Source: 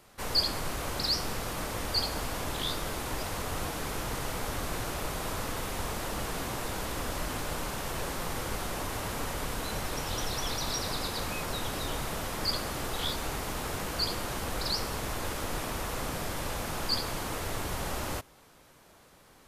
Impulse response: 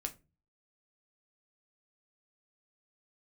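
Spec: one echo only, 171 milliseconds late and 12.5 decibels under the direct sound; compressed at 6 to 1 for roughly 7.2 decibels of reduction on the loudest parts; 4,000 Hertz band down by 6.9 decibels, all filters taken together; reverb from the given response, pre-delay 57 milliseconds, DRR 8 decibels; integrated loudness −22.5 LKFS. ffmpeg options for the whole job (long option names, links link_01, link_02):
-filter_complex "[0:a]equalizer=frequency=4000:width_type=o:gain=-8.5,acompressor=threshold=-37dB:ratio=6,aecho=1:1:171:0.237,asplit=2[link_01][link_02];[1:a]atrim=start_sample=2205,adelay=57[link_03];[link_02][link_03]afir=irnorm=-1:irlink=0,volume=-7.5dB[link_04];[link_01][link_04]amix=inputs=2:normalize=0,volume=18dB"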